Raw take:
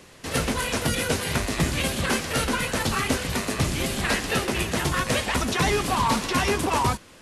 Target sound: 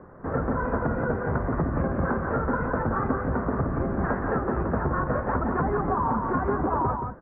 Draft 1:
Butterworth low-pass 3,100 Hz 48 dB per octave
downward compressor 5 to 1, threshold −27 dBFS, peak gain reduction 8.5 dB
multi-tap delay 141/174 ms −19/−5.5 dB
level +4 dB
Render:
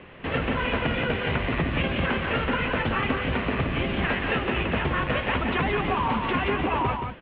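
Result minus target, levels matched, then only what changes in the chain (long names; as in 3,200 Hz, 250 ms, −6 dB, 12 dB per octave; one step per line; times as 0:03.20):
2,000 Hz band +6.5 dB
change: Butterworth low-pass 1,500 Hz 48 dB per octave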